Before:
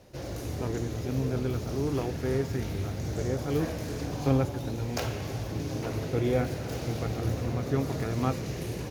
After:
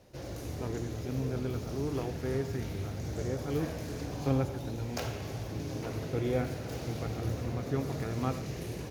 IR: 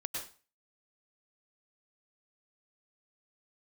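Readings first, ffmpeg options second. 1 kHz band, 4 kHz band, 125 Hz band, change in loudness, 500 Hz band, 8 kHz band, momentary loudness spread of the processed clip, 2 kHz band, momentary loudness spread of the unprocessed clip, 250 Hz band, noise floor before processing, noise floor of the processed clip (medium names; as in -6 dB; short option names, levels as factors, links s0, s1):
-4.0 dB, -4.0 dB, -4.0 dB, -4.0 dB, -4.0 dB, -4.0 dB, 7 LU, -4.0 dB, 7 LU, -4.0 dB, -36 dBFS, -40 dBFS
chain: -filter_complex "[0:a]asplit=2[s0][s1];[1:a]atrim=start_sample=2205,asetrate=57330,aresample=44100[s2];[s1][s2]afir=irnorm=-1:irlink=0,volume=0.398[s3];[s0][s3]amix=inputs=2:normalize=0,volume=0.501"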